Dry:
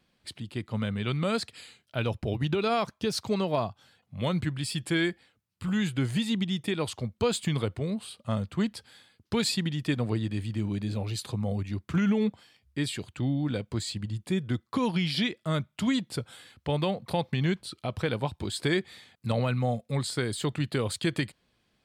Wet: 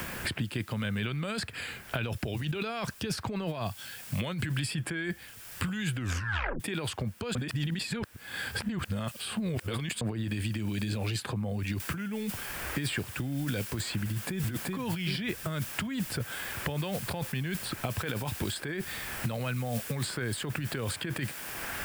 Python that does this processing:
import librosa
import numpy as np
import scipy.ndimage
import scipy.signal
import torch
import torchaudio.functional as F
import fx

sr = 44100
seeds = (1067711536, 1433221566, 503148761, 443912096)

y = fx.noise_floor_step(x, sr, seeds[0], at_s=11.8, before_db=-65, after_db=-49, tilt_db=0.0)
y = fx.echo_throw(y, sr, start_s=14.05, length_s=0.4, ms=380, feedback_pct=25, wet_db=-0.5)
y = fx.edit(y, sr, fx.tape_stop(start_s=5.96, length_s=0.64),
    fx.reverse_span(start_s=7.35, length_s=2.66), tone=tone)
y = fx.over_compress(y, sr, threshold_db=-33.0, ratio=-1.0)
y = fx.graphic_eq_31(y, sr, hz=(1600, 2500, 4000, 6300), db=(8, 3, -5, -4))
y = fx.band_squash(y, sr, depth_pct=100)